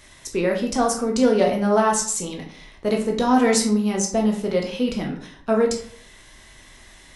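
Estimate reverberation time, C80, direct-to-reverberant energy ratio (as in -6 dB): 0.55 s, 11.5 dB, 0.0 dB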